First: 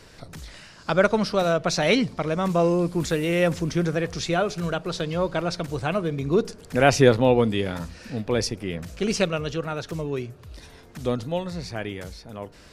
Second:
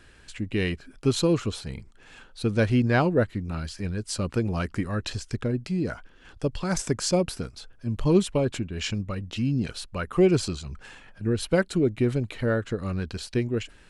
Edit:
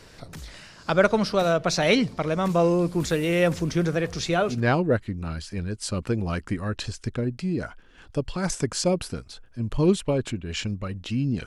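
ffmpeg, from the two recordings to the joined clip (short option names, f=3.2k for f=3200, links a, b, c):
-filter_complex "[0:a]apad=whole_dur=11.46,atrim=end=11.46,atrim=end=4.63,asetpts=PTS-STARTPTS[a];[1:a]atrim=start=2.74:end=9.73,asetpts=PTS-STARTPTS[b];[a][b]acrossfade=d=0.16:c1=tri:c2=tri"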